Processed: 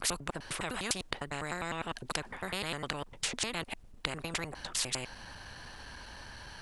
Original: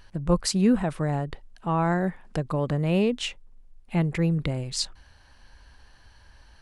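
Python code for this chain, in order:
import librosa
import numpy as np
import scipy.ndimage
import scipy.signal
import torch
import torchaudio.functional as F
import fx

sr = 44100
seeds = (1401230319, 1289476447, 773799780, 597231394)

y = fx.block_reorder(x, sr, ms=101.0, group=5)
y = fx.spectral_comp(y, sr, ratio=4.0)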